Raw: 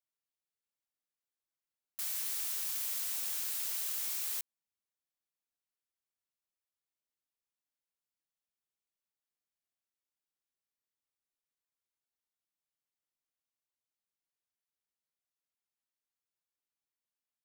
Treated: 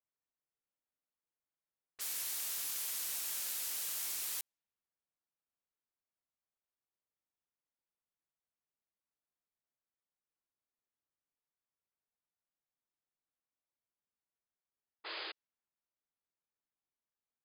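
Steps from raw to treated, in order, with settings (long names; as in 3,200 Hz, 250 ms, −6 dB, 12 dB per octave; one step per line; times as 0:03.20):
sound drawn into the spectrogram noise, 0:15.04–0:15.32, 310–5,000 Hz −43 dBFS
low-pass that shuts in the quiet parts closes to 1,600 Hz, open at −37 dBFS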